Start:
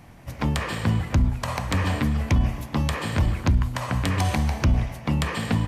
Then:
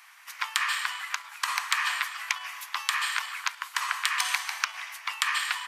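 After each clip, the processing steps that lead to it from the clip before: steep high-pass 1.1 kHz 36 dB/octave; trim +5 dB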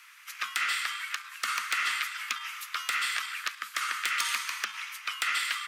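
saturation -19.5 dBFS, distortion -11 dB; frequency shift +200 Hz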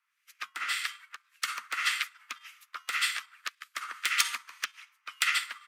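harmonic tremolo 1.8 Hz, depth 70%, crossover 1.5 kHz; upward expansion 2.5:1, over -48 dBFS; trim +7.5 dB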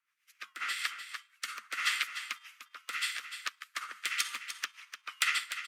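rotary cabinet horn 7.5 Hz, later 0.7 Hz, at 0.42 s; on a send: delay 299 ms -10 dB

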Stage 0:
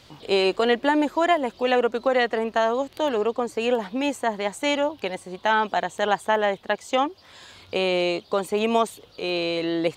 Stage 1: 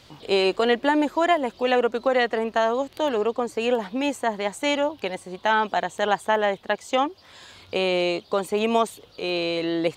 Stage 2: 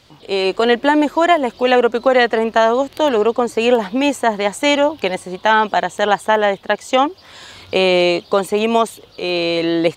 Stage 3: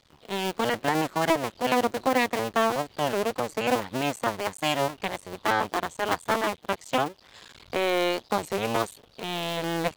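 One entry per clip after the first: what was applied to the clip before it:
no audible change
level rider gain up to 11.5 dB
cycle switcher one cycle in 2, muted; warped record 33 1/3 rpm, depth 100 cents; trim -8.5 dB

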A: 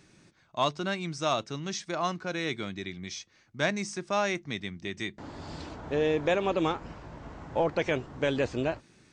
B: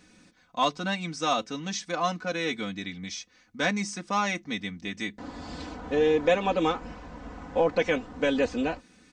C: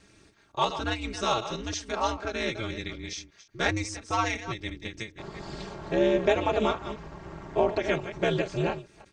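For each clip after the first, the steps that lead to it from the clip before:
comb 4 ms, depth 93%
chunks repeated in reverse 174 ms, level -11 dB; ring modulator 110 Hz; endings held to a fixed fall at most 210 dB/s; trim +2.5 dB

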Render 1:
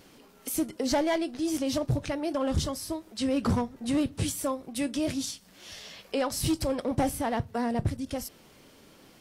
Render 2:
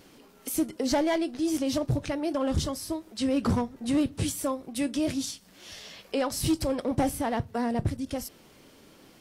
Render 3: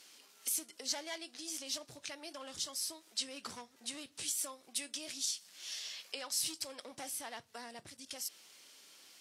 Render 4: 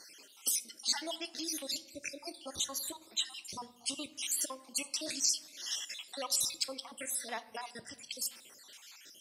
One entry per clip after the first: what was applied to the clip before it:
peaking EQ 320 Hz +2 dB
compression 2:1, threshold -34 dBFS, peak gain reduction 7.5 dB; band-pass filter 6.5 kHz, Q 0.68; trim +4 dB
random holes in the spectrogram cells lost 60%; on a send at -13.5 dB: reverberation RT60 1.3 s, pre-delay 3 ms; on the sum: trim +8 dB

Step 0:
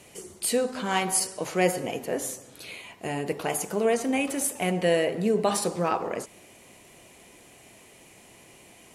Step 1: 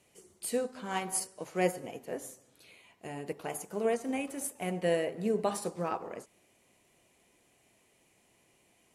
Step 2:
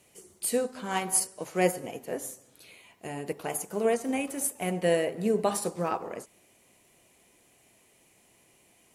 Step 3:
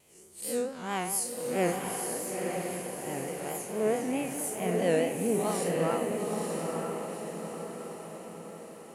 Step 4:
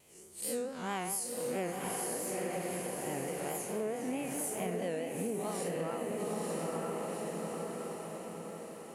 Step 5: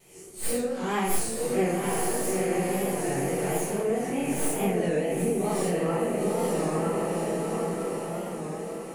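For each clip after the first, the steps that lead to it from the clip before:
dynamic bell 3.7 kHz, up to -4 dB, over -41 dBFS, Q 0.76; upward expansion 1.5:1, over -41 dBFS; trim -4.5 dB
treble shelf 9.3 kHz +7 dB; trim +4 dB
spectral blur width 121 ms; vibrato 4.6 Hz 94 cents; echo that smears into a reverb 913 ms, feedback 52%, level -3 dB
compression 12:1, threshold -32 dBFS, peak gain reduction 11.5 dB
tracing distortion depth 0.029 ms; simulated room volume 52 m³, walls mixed, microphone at 1.6 m; warped record 33 1/3 rpm, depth 100 cents

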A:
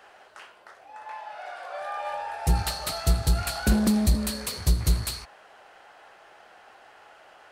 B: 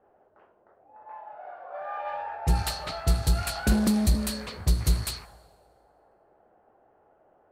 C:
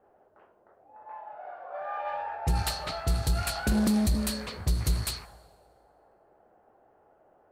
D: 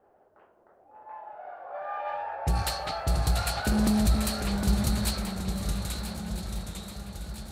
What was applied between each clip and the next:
level-controlled noise filter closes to 410 Hz, open at -22 dBFS; on a send at -23 dB: reverberation RT60 1.8 s, pre-delay 78 ms; on the sum: trim -1 dB
peak limiter -17 dBFS, peak gain reduction 5.5 dB
ever faster or slower copies 530 ms, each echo -1 st, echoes 3, each echo -6 dB; shuffle delay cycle 1307 ms, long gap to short 3:1, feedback 49%, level -11 dB

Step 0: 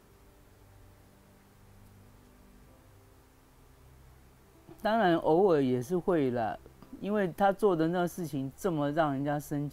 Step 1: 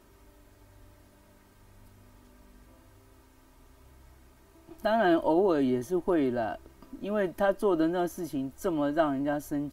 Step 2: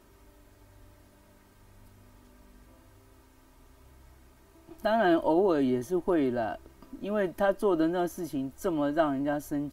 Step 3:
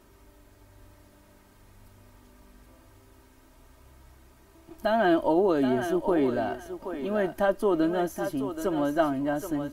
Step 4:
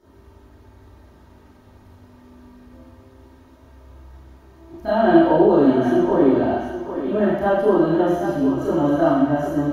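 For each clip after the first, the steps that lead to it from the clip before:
comb 3.2 ms, depth 56%
no audible change
thinning echo 777 ms, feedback 22%, high-pass 420 Hz, level -7 dB; trim +1.5 dB
reverberation RT60 1.1 s, pre-delay 28 ms, DRR -12 dB; trim -12 dB

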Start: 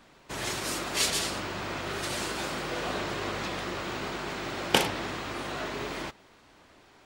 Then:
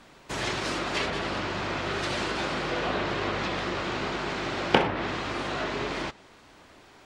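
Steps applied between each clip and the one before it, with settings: low-pass that closes with the level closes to 2 kHz, closed at -25 dBFS; trim +4 dB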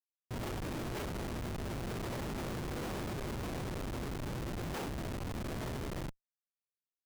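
mains buzz 120 Hz, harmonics 5, -44 dBFS -3 dB/octave; Schmitt trigger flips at -26 dBFS; trim -8 dB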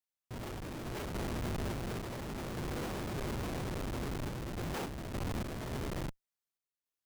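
random-step tremolo; trim +3 dB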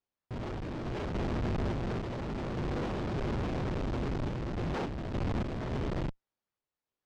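in parallel at -7 dB: decimation with a swept rate 17×, swing 60% 3.5 Hz; on the sum: distance through air 140 m; trim +2 dB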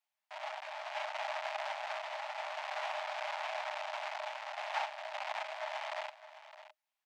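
rippled Chebyshev high-pass 600 Hz, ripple 6 dB; delay 612 ms -14 dB; trim +6.5 dB

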